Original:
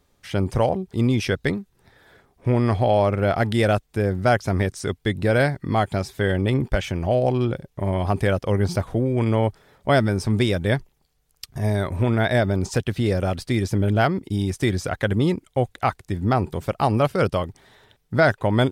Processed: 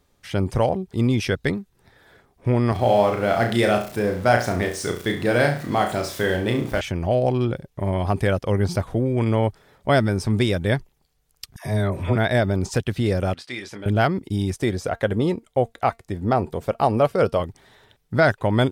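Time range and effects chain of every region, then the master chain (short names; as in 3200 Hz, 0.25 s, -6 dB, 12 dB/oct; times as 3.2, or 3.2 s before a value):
2.72–6.81 zero-crossing step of -35 dBFS + HPF 190 Hz 6 dB/oct + flutter echo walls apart 5.8 m, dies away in 0.4 s
11.56–12.16 notch 830 Hz, Q 19 + dispersion lows, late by 96 ms, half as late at 790 Hz
13.34–13.86 band-pass 2200 Hz, Q 0.63 + doubler 24 ms -8 dB
14.56–17.4 bell 570 Hz +7 dB 1.5 oct + resonator 230 Hz, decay 0.15 s, mix 40%
whole clip: dry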